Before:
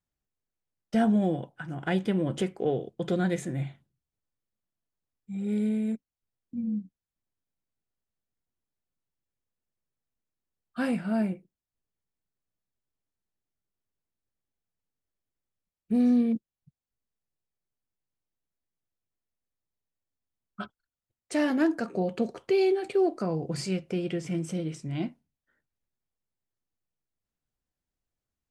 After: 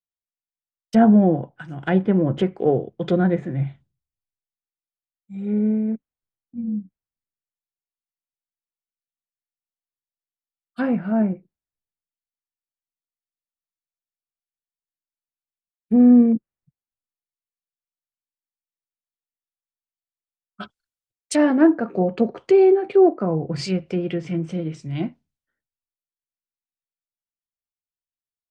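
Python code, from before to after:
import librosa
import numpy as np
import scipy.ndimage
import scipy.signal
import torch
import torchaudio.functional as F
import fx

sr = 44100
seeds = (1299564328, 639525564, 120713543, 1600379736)

y = fx.env_lowpass_down(x, sr, base_hz=1400.0, full_db=-25.0)
y = fx.band_widen(y, sr, depth_pct=70)
y = F.gain(torch.from_numpy(y), 7.5).numpy()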